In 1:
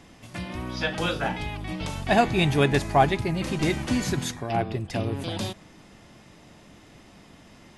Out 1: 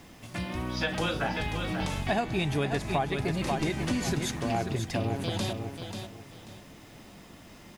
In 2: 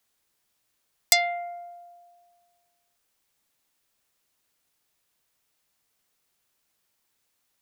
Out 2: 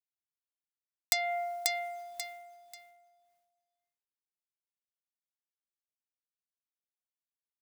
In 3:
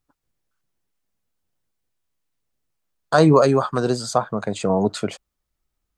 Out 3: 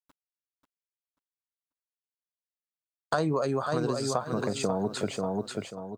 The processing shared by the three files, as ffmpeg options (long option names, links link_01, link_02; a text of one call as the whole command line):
ffmpeg -i in.wav -af "acrusher=bits=9:mix=0:aa=0.000001,aecho=1:1:538|1076|1614:0.376|0.0977|0.0254,acompressor=threshold=-25dB:ratio=6" out.wav